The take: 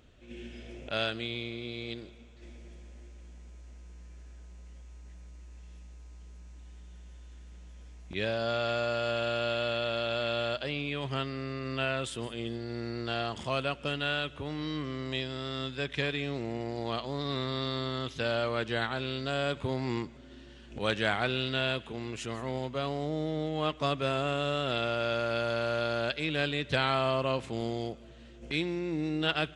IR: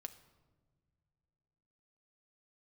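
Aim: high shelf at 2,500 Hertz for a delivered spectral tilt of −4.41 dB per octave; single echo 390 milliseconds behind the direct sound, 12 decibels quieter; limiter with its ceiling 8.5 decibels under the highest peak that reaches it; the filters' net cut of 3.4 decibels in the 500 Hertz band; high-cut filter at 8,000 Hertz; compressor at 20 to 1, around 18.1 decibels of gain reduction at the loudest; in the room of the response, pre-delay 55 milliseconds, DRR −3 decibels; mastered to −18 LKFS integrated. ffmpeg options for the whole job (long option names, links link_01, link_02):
-filter_complex "[0:a]lowpass=8000,equalizer=frequency=500:width_type=o:gain=-4,highshelf=frequency=2500:gain=-4.5,acompressor=threshold=-44dB:ratio=20,alimiter=level_in=15.5dB:limit=-24dB:level=0:latency=1,volume=-15.5dB,aecho=1:1:390:0.251,asplit=2[link_01][link_02];[1:a]atrim=start_sample=2205,adelay=55[link_03];[link_02][link_03]afir=irnorm=-1:irlink=0,volume=8dB[link_04];[link_01][link_04]amix=inputs=2:normalize=0,volume=27.5dB"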